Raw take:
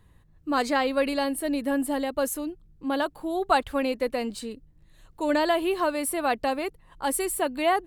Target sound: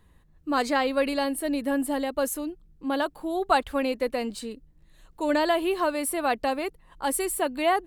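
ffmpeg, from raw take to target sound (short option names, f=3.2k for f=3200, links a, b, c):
-af "equalizer=f=110:t=o:w=0.36:g=-12"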